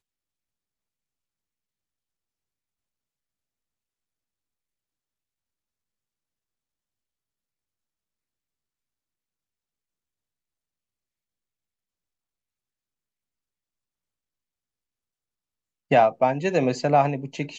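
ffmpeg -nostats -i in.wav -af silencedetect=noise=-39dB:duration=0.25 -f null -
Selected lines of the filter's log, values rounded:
silence_start: 0.00
silence_end: 15.91 | silence_duration: 15.91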